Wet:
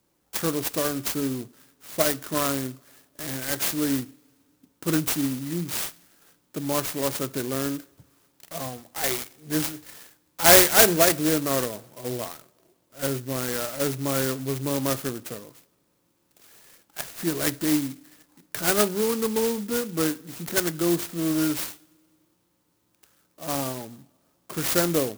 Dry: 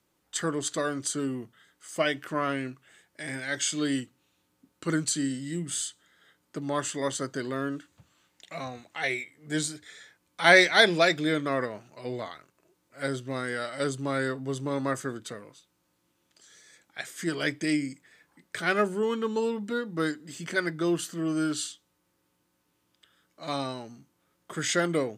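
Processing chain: two-slope reverb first 0.65 s, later 2.6 s, DRR 18.5 dB; clock jitter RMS 0.13 ms; gain +3.5 dB

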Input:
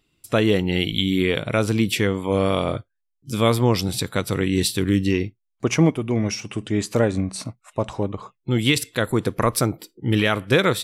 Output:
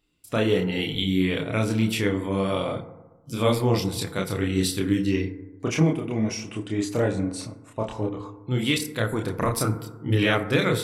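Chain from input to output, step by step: chorus voices 4, 1.1 Hz, delay 29 ms, depth 3 ms; FDN reverb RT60 1.2 s, low-frequency decay 1×, high-frequency decay 0.3×, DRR 9 dB; gain -1.5 dB

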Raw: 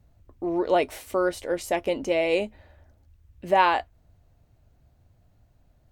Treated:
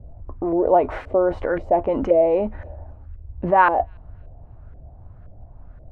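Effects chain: low shelf 80 Hz +11 dB; in parallel at +0.5 dB: negative-ratio compressor -34 dBFS, ratio -1; on the sum: LFO low-pass saw up 1.9 Hz 540–1600 Hz; thin delay 0.288 s, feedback 33%, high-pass 5500 Hz, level -17 dB

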